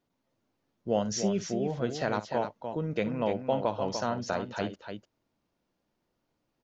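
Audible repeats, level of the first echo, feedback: 2, -15.5 dB, no steady repeat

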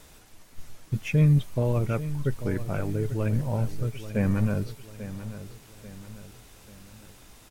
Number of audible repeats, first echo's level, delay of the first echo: 4, -13.0 dB, 0.84 s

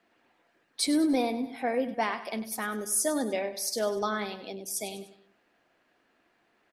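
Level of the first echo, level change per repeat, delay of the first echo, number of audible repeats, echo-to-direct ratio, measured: -13.5 dB, -7.0 dB, 99 ms, 3, -12.5 dB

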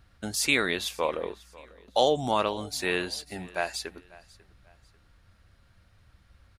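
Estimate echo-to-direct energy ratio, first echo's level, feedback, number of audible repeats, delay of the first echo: -21.5 dB, -22.0 dB, 33%, 2, 0.544 s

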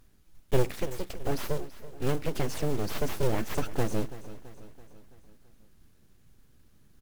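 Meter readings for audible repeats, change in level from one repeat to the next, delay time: 4, -5.5 dB, 0.332 s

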